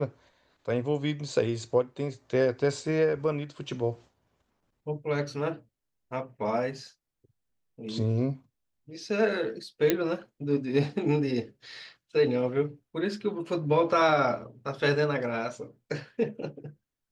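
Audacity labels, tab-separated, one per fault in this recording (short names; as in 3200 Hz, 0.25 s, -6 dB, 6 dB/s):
9.900000	9.900000	pop -8 dBFS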